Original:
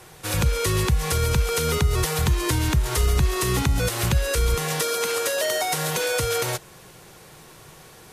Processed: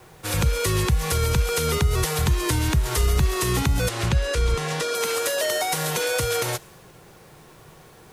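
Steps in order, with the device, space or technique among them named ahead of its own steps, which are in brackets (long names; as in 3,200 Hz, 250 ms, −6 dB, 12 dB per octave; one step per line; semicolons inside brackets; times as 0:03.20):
plain cassette with noise reduction switched in (one half of a high-frequency compander decoder only; tape wow and flutter 27 cents; white noise bed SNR 39 dB)
0:03.89–0:04.95: high-frequency loss of the air 58 metres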